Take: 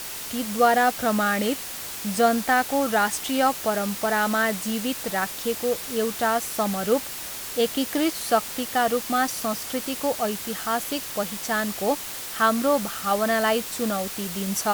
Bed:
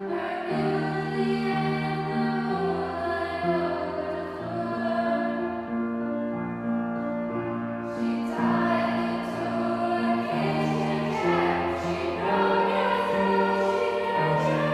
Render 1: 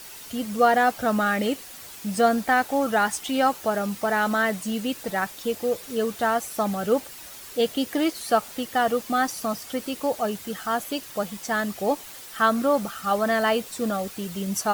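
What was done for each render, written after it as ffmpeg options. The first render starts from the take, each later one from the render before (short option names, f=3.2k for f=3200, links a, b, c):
-af "afftdn=nr=9:nf=-35"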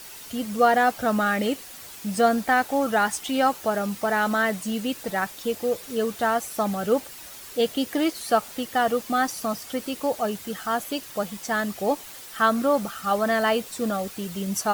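-af anull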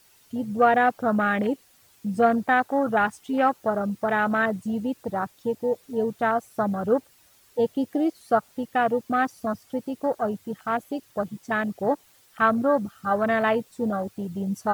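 -af "afwtdn=0.0447,equalizer=f=100:t=o:w=0.87:g=7.5"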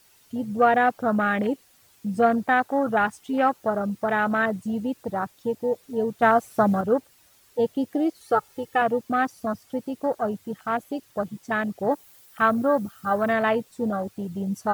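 -filter_complex "[0:a]asettb=1/sr,asplit=3[a][b][c];[a]atrim=end=8.204[d];[b]atrim=start=8.2:end=8.82,asetpts=PTS-STARTPTS,afade=t=in:d=0.004:c=qsin,afade=t=out:st=0.616:d=0.004:c=qsin,aecho=1:1:2.3:0.65,atrim=end_sample=27342[e];[c]atrim=start=8.816[f];[d][e]acrossfade=d=0.004:c1=hsin:c2=qsin[g];[g][f]acrossfade=d=0.004:c1=qsin:c2=hsin,asettb=1/sr,asplit=3[h][i][j];[h]atrim=end=11.914[k];[i]atrim=start=11.91:end=13.33,asetpts=PTS-STARTPTS,afade=t=in:d=0.004:c=qsin,afade=t=out:st=1.416:d=0.004:c=qsin,highshelf=f=11k:g=9.5[l];[j]atrim=start=13.326[m];[k][l]acrossfade=d=0.004:c1=hsin:c2=qsin[n];[n][m]acrossfade=d=0.004:c1=qsin:c2=hsin,asplit=3[o][p][q];[o]atrim=end=6.222[r];[p]atrim=start=6.218:end=6.812,asetpts=PTS-STARTPTS,volume=5dB[s];[q]atrim=start=6.808[t];[r][s]acrossfade=d=0.004:c1=hsin:c2=hsin[u];[u][t]acrossfade=d=0.004:c1=hsin:c2=hsin"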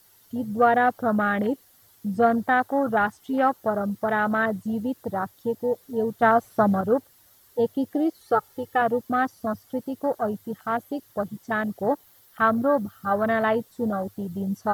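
-filter_complex "[0:a]acrossover=split=5100[a][b];[b]acompressor=threshold=-57dB:ratio=4:attack=1:release=60[c];[a][c]amix=inputs=2:normalize=0,equalizer=f=100:t=o:w=0.33:g=5,equalizer=f=2.5k:t=o:w=0.33:g=-9,equalizer=f=12.5k:t=o:w=0.33:g=11"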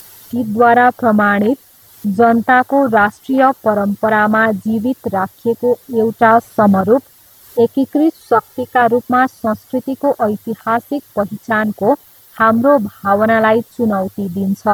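-af "acompressor=mode=upward:threshold=-42dB:ratio=2.5,alimiter=level_in=11dB:limit=-1dB:release=50:level=0:latency=1"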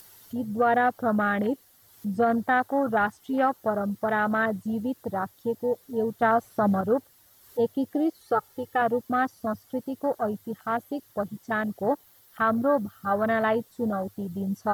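-af "volume=-12.5dB"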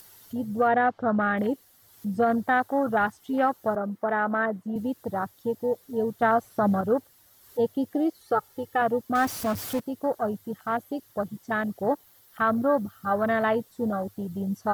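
-filter_complex "[0:a]asplit=3[a][b][c];[a]afade=t=out:st=0.67:d=0.02[d];[b]lowpass=3.4k,afade=t=in:st=0.67:d=0.02,afade=t=out:st=1.36:d=0.02[e];[c]afade=t=in:st=1.36:d=0.02[f];[d][e][f]amix=inputs=3:normalize=0,asettb=1/sr,asplit=3[g][h][i];[g]atrim=end=3.754[j];[h]atrim=start=3.75:end=4.76,asetpts=PTS-STARTPTS,afade=t=in:d=0.004:c=qsin,afade=t=out:st=1.006:d=0.004:c=qsin,acrossover=split=170 2300:gain=0.0891 1 0.251[k][l][m];[k][l][m]amix=inputs=3:normalize=0[n];[i]atrim=start=4.756[o];[j][n]acrossfade=d=0.004:c1=hsin:c2=qsin[p];[p][o]acrossfade=d=0.004:c1=qsin:c2=hsin,asettb=1/sr,asplit=3[q][r][s];[q]atrim=end=9.154[t];[r]atrim=start=9.15:end=9.8,asetpts=PTS-STARTPTS,afade=t=in:d=0.004:c=qsin,afade=t=out:st=0.646:d=0.004:c=qsin,aeval=exprs='val(0)+0.5*0.0299*sgn(val(0))':c=same[u];[s]atrim=start=9.796[v];[t][u]acrossfade=d=0.004:c1=hsin:c2=qsin[w];[w][v]acrossfade=d=0.004:c1=qsin:c2=hsin"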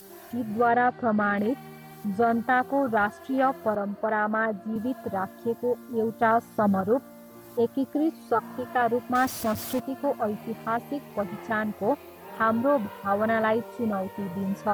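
-filter_complex "[1:a]volume=-18dB[a];[0:a][a]amix=inputs=2:normalize=0"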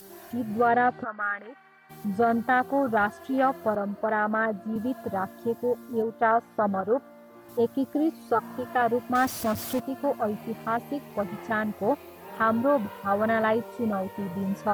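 -filter_complex "[0:a]asplit=3[a][b][c];[a]afade=t=out:st=1.03:d=0.02[d];[b]bandpass=f=1.5k:t=q:w=2.2,afade=t=in:st=1.03:d=0.02,afade=t=out:st=1.89:d=0.02[e];[c]afade=t=in:st=1.89:d=0.02[f];[d][e][f]amix=inputs=3:normalize=0,asettb=1/sr,asplit=3[g][h][i];[g]atrim=end=6.024[j];[h]atrim=start=6.02:end=7.49,asetpts=PTS-STARTPTS,afade=t=in:d=0.004:c=qsin,afade=t=out:st=1.466:d=0.004:c=qsin,bass=f=250:g=-9,treble=f=4k:g=-13[k];[i]atrim=start=7.486[l];[j][k]acrossfade=d=0.004:c1=hsin:c2=qsin[m];[m][l]acrossfade=d=0.004:c1=qsin:c2=hsin"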